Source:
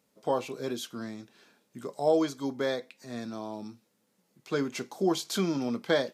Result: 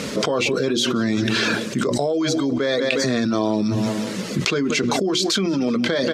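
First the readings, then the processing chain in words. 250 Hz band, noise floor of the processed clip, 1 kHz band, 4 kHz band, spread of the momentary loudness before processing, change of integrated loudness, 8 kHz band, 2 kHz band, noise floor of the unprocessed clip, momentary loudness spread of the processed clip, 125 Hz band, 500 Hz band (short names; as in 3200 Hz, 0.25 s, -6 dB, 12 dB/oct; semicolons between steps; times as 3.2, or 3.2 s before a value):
+12.5 dB, -28 dBFS, +8.0 dB, +16.0 dB, 15 LU, +10.5 dB, +14.5 dB, +15.0 dB, -74 dBFS, 3 LU, +14.0 dB, +8.5 dB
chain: reverb removal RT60 0.51 s; LPF 5900 Hz 12 dB/oct; bell 820 Hz -10 dB 0.57 oct; notches 60/120/180/240/300/360 Hz; feedback echo 0.18 s, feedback 42%, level -22.5 dB; maximiser +23 dB; fast leveller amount 100%; gain -15.5 dB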